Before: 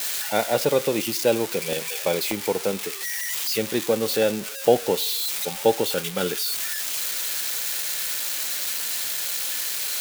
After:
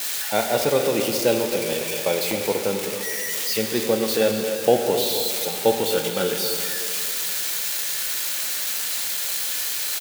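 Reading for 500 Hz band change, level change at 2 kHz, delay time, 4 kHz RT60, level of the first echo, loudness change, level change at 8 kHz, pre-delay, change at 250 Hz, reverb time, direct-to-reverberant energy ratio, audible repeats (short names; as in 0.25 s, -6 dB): +1.5 dB, +1.5 dB, 0.266 s, 2.5 s, -11.5 dB, +1.5 dB, +1.5 dB, 4 ms, +1.5 dB, 2.7 s, 3.5 dB, 1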